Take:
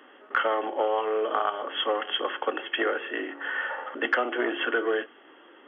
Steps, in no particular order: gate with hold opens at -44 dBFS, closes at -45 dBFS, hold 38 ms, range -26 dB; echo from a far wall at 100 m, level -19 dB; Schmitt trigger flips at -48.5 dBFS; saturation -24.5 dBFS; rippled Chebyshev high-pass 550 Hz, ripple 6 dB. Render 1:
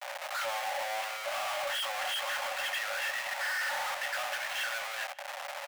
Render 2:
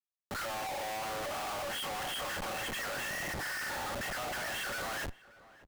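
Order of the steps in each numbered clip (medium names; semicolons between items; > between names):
gate with hold > Schmitt trigger > rippled Chebyshev high-pass > saturation > echo from a far wall; saturation > rippled Chebyshev high-pass > gate with hold > Schmitt trigger > echo from a far wall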